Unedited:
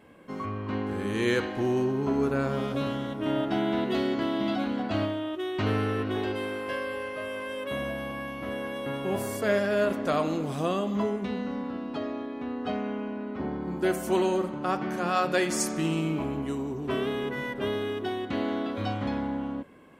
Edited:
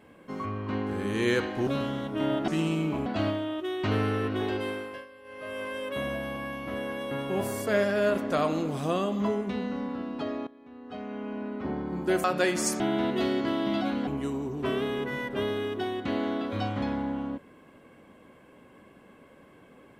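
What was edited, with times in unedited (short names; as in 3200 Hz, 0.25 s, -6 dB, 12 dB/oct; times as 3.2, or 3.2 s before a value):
1.67–2.73 cut
3.54–4.81 swap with 15.74–16.32
6.44–7.36 dip -17.5 dB, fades 0.38 s linear
12.22–13.16 fade in quadratic, from -17 dB
13.99–15.18 cut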